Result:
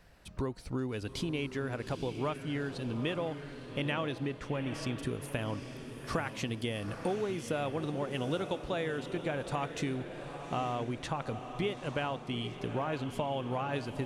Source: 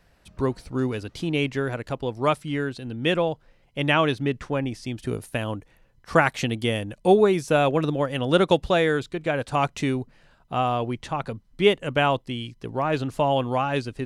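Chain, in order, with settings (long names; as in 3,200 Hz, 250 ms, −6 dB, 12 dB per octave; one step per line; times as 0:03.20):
downward compressor 6 to 1, threshold −32 dBFS, peak gain reduction 18.5 dB
on a send: feedback delay with all-pass diffusion 857 ms, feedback 53%, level −9 dB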